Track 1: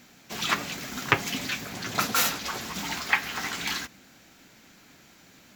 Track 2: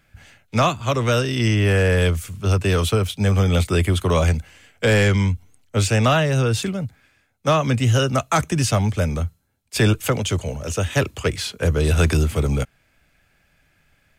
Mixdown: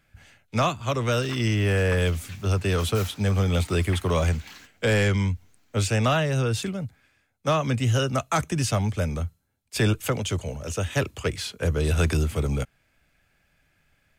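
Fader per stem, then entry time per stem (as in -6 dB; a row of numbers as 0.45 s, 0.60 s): -15.5 dB, -5.0 dB; 0.80 s, 0.00 s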